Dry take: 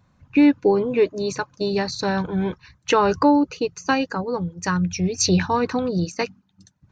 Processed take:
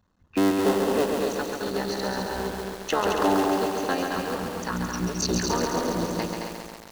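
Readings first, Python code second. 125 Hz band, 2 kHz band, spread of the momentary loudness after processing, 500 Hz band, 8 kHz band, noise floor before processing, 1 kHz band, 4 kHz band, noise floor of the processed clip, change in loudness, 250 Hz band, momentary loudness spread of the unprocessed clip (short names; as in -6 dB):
-7.0 dB, -3.5 dB, 9 LU, -3.5 dB, -3.5 dB, -63 dBFS, -3.0 dB, -2.5 dB, -51 dBFS, -4.5 dB, -6.0 dB, 10 LU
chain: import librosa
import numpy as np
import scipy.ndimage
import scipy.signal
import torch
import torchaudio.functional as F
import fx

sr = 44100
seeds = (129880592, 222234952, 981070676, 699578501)

p1 = fx.cycle_switch(x, sr, every=3, mode='muted')
p2 = fx.peak_eq(p1, sr, hz=130.0, db=-14.0, octaves=0.33)
p3 = fx.notch(p2, sr, hz=2300.0, q=5.1)
p4 = p3 + fx.echo_single(p3, sr, ms=217, db=-5.0, dry=0)
p5 = fx.echo_crushed(p4, sr, ms=137, feedback_pct=80, bits=6, wet_db=-4)
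y = p5 * 10.0 ** (-5.5 / 20.0)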